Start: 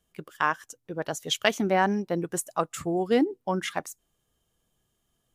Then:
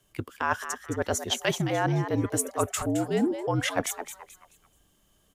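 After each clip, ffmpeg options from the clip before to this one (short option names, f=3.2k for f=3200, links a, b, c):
-filter_complex "[0:a]areverse,acompressor=threshold=-32dB:ratio=6,areverse,afreqshift=-58,asplit=5[a][b][c][d][e];[b]adelay=216,afreqshift=150,volume=-10dB[f];[c]adelay=432,afreqshift=300,volume=-19.6dB[g];[d]adelay=648,afreqshift=450,volume=-29.3dB[h];[e]adelay=864,afreqshift=600,volume=-38.9dB[i];[a][f][g][h][i]amix=inputs=5:normalize=0,volume=8.5dB"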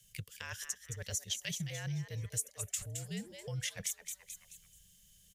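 -af "firequalizer=gain_entry='entry(190,0);entry(270,-30);entry(490,-10);entry(760,-22);entry(1300,-18);entry(1800,-3);entry(2700,1);entry(6000,8);entry(9300,6)':delay=0.05:min_phase=1,acompressor=threshold=-44dB:ratio=2"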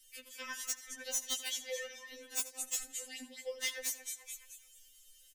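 -filter_complex "[0:a]aeval=exprs='(mod(17.8*val(0)+1,2)-1)/17.8':c=same,asplit=2[a][b];[b]adelay=85,lowpass=f=4.5k:p=1,volume=-14dB,asplit=2[c][d];[d]adelay=85,lowpass=f=4.5k:p=1,volume=0.49,asplit=2[e][f];[f]adelay=85,lowpass=f=4.5k:p=1,volume=0.49,asplit=2[g][h];[h]adelay=85,lowpass=f=4.5k:p=1,volume=0.49,asplit=2[i][j];[j]adelay=85,lowpass=f=4.5k:p=1,volume=0.49[k];[a][c][e][g][i][k]amix=inputs=6:normalize=0,afftfilt=real='re*3.46*eq(mod(b,12),0)':imag='im*3.46*eq(mod(b,12),0)':win_size=2048:overlap=0.75,volume=4.5dB"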